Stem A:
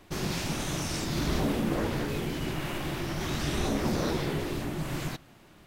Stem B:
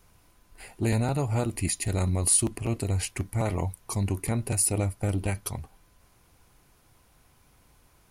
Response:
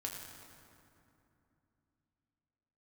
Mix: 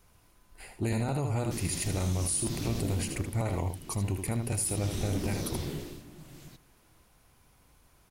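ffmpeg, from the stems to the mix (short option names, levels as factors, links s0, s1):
-filter_complex "[0:a]highshelf=f=5200:g=5,acrossover=split=480|3000[s0][s1][s2];[s1]acompressor=threshold=0.00501:ratio=6[s3];[s0][s3][s2]amix=inputs=3:normalize=0,adelay=1400,volume=1.88,afade=t=out:st=2.91:d=0.48:silence=0.316228,afade=t=in:st=4.47:d=0.46:silence=0.281838,afade=t=out:st=5.74:d=0.28:silence=0.266073[s4];[1:a]volume=0.75,asplit=2[s5][s6];[s6]volume=0.398,aecho=0:1:78:1[s7];[s4][s5][s7]amix=inputs=3:normalize=0,alimiter=limit=0.0891:level=0:latency=1:release=59"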